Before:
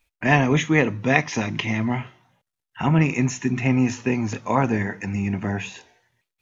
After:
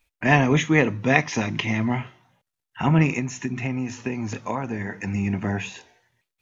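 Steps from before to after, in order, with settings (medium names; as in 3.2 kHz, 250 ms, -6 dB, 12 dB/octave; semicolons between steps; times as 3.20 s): 3.18–5.06 s: compression 6:1, threshold -24 dBFS, peak gain reduction 10 dB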